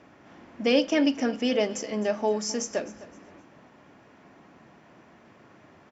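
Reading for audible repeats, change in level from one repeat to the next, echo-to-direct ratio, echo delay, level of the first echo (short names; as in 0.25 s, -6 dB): 2, -10.5 dB, -18.0 dB, 0.259 s, -18.5 dB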